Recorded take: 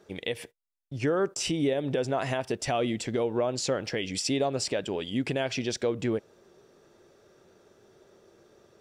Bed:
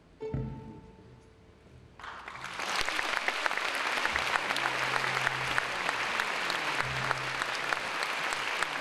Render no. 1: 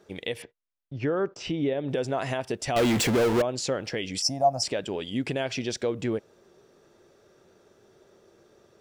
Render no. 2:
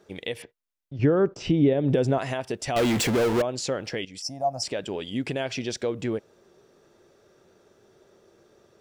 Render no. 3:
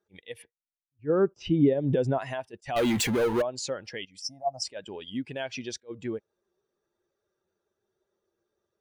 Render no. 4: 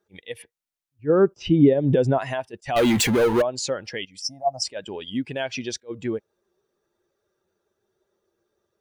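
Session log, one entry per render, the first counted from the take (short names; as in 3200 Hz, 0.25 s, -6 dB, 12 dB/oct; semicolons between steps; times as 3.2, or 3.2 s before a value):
0.42–1.89 air absorption 190 m; 2.76–3.42 power-law curve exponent 0.35; 4.22–4.63 EQ curve 170 Hz 0 dB, 270 Hz -6 dB, 420 Hz -21 dB, 690 Hz +12 dB, 1400 Hz -10 dB, 2400 Hz -20 dB, 3700 Hz -26 dB, 5300 Hz +11 dB, 7700 Hz -4 dB, 11000 Hz +6 dB
0.99–2.18 low shelf 420 Hz +11 dB; 4.05–4.86 fade in, from -12.5 dB
per-bin expansion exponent 1.5; attack slew limiter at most 400 dB/s
gain +6 dB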